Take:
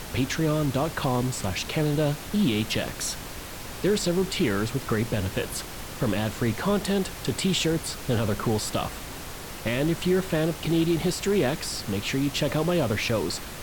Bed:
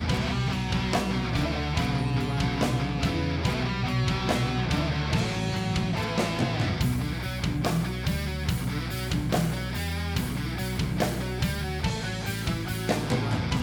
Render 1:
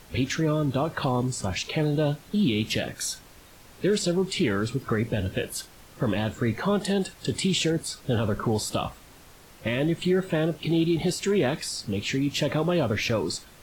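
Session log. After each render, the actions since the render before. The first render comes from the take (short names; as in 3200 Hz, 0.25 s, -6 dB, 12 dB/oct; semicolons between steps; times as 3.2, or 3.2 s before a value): noise print and reduce 13 dB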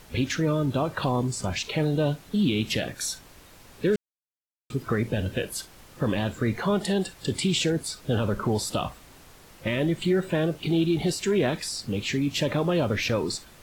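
3.96–4.7 mute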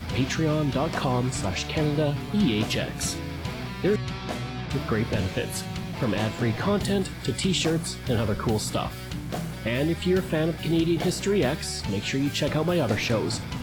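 add bed -6 dB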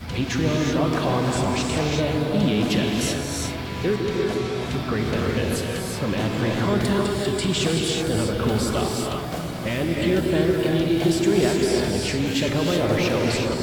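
delay with a stepping band-pass 0.157 s, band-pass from 300 Hz, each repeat 0.7 oct, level -2 dB; non-linear reverb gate 0.4 s rising, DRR 0 dB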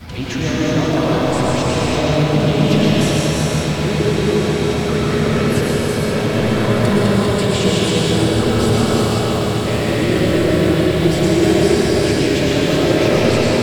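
on a send: swelling echo 0.135 s, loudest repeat 8, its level -16 dB; on the sum: digital reverb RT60 2.5 s, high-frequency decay 0.65×, pre-delay 80 ms, DRR -4.5 dB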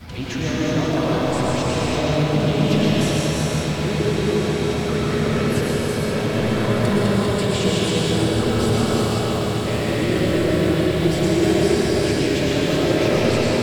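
gain -4 dB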